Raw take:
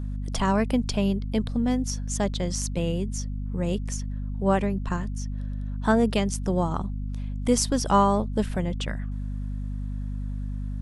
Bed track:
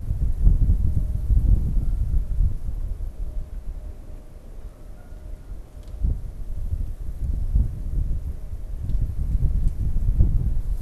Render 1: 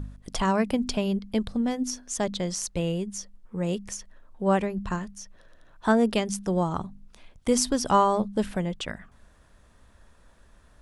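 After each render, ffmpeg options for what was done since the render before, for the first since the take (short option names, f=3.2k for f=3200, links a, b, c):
-af "bandreject=f=50:t=h:w=4,bandreject=f=100:t=h:w=4,bandreject=f=150:t=h:w=4,bandreject=f=200:t=h:w=4,bandreject=f=250:t=h:w=4"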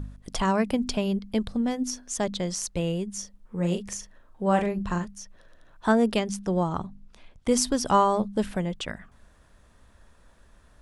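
-filter_complex "[0:a]asettb=1/sr,asplit=3[a][b][c];[a]atrim=end=3.134[d];[b]atrim=start=3.13:end=5.05,asetpts=PTS-STARTPTS,afade=t=in:d=0.004:c=qsin,afade=t=out:st=1.916:d=0.004:c=qsin,asplit=2[e][f];[f]adelay=40,volume=-6dB[g];[e][g]amix=inputs=2:normalize=0,atrim=end_sample=84672[h];[c]atrim=start=5.046[i];[d][h]acrossfade=d=0.004:c1=hsin:c2=qsin[j];[j][i]acrossfade=d=0.004:c1=qsin:c2=hsin,asettb=1/sr,asplit=3[k][l][m];[k]atrim=end=6.194[n];[l]atrim=start=6.19:end=7.51,asetpts=PTS-STARTPTS,afade=t=in:d=0.004:c=qsin,afade=t=out:st=1.316:d=0.004:c=qsin,highshelf=f=9.9k:g=-11[o];[m]atrim=start=7.506[p];[n][o]acrossfade=d=0.004:c1=hsin:c2=qsin[q];[q][p]acrossfade=d=0.004:c1=qsin:c2=hsin"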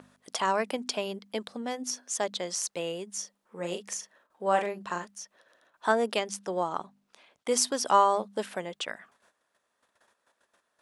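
-af "agate=range=-13dB:threshold=-52dB:ratio=16:detection=peak,highpass=460"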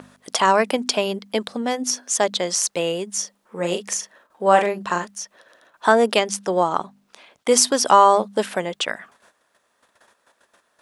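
-af "volume=10.5dB,alimiter=limit=-2dB:level=0:latency=1"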